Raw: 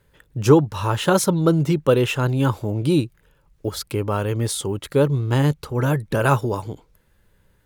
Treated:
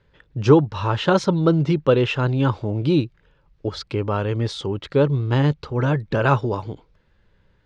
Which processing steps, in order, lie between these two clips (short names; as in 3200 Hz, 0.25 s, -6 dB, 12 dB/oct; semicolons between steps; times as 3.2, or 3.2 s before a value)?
LPF 5000 Hz 24 dB/oct